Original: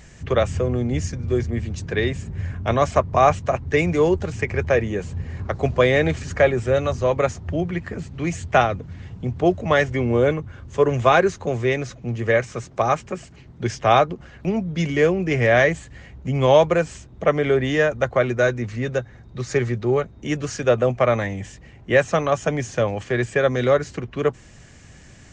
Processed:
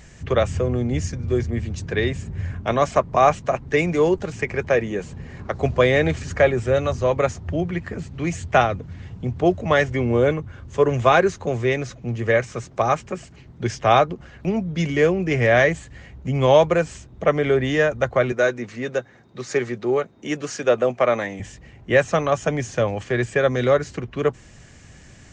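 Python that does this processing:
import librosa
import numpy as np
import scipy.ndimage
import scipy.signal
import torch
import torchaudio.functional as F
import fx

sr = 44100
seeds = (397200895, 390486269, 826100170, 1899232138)

y = fx.peak_eq(x, sr, hz=86.0, db=-11.5, octaves=0.68, at=(2.6, 5.55))
y = fx.highpass(y, sr, hz=220.0, slope=12, at=(18.32, 21.4))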